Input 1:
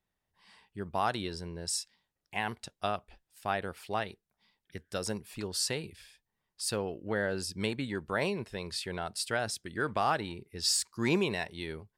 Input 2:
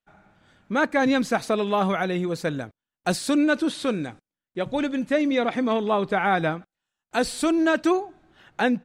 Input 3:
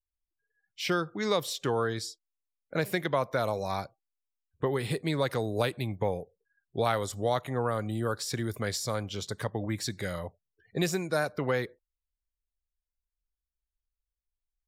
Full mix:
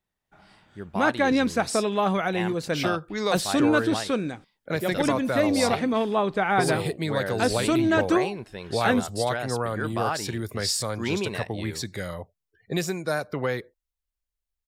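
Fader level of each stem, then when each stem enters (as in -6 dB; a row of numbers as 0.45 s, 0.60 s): +0.5 dB, -1.0 dB, +1.5 dB; 0.00 s, 0.25 s, 1.95 s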